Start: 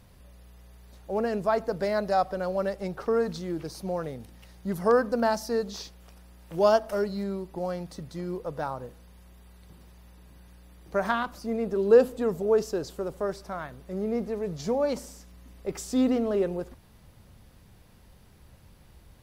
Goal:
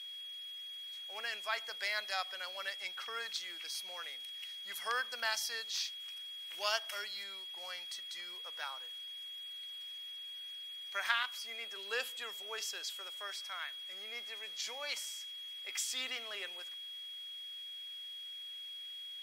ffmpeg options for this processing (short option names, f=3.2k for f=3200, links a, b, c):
-af "aeval=exprs='val(0)+0.00355*sin(2*PI*3300*n/s)':c=same,highpass=f=2.3k:t=q:w=2.1,volume=1dB"